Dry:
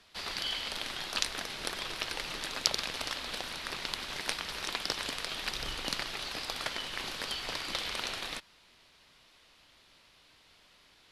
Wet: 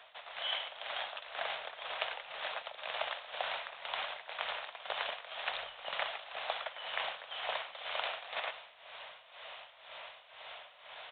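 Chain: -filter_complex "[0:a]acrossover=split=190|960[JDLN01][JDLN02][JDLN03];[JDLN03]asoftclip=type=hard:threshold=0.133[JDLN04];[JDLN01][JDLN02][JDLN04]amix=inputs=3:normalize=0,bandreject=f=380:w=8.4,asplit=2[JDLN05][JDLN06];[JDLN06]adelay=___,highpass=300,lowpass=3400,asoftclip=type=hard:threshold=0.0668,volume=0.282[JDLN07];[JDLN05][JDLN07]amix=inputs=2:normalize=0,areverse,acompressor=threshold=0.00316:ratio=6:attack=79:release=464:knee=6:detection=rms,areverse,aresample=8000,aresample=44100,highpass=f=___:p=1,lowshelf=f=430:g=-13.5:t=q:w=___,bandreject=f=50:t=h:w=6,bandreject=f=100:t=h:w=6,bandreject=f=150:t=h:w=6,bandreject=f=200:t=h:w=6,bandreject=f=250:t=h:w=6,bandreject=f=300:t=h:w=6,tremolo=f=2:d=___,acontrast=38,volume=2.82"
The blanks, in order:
110, 99, 3, 0.77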